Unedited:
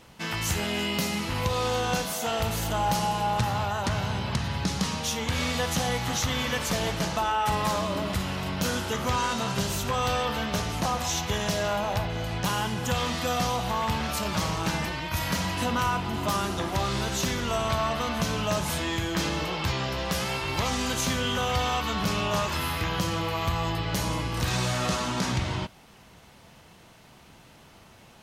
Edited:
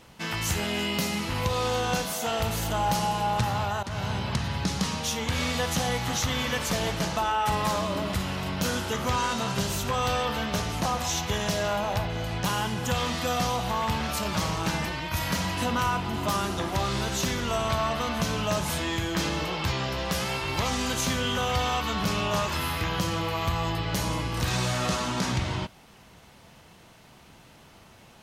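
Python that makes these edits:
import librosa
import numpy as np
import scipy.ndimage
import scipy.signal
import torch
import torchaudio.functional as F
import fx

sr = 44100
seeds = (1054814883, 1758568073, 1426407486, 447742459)

y = fx.edit(x, sr, fx.fade_in_from(start_s=3.83, length_s=0.32, curve='qsin', floor_db=-15.5), tone=tone)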